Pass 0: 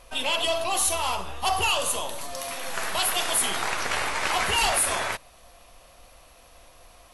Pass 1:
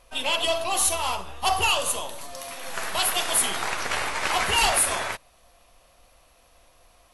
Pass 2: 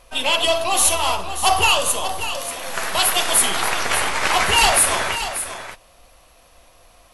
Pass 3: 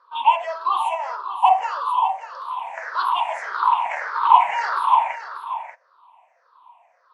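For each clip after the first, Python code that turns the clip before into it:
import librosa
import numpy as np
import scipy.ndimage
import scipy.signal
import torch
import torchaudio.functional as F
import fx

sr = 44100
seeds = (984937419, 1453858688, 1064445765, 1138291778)

y1 = fx.upward_expand(x, sr, threshold_db=-37.0, expansion=1.5)
y1 = y1 * librosa.db_to_amplitude(2.5)
y2 = y1 + 10.0 ** (-10.5 / 20.0) * np.pad(y1, (int(588 * sr / 1000.0), 0))[:len(y1)]
y2 = y2 * librosa.db_to_amplitude(6.0)
y3 = fx.spec_ripple(y2, sr, per_octave=0.58, drift_hz=-1.7, depth_db=23)
y3 = fx.wow_flutter(y3, sr, seeds[0], rate_hz=2.1, depth_cents=23.0)
y3 = fx.ladder_bandpass(y3, sr, hz=1000.0, resonance_pct=80)
y3 = y3 * librosa.db_to_amplitude(1.5)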